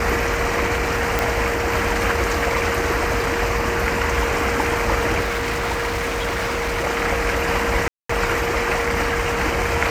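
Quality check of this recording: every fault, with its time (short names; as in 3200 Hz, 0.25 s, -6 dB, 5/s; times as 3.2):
tone 470 Hz -25 dBFS
1.19 pop
5.21–6.85 clipped -19.5 dBFS
7.88–8.09 gap 0.214 s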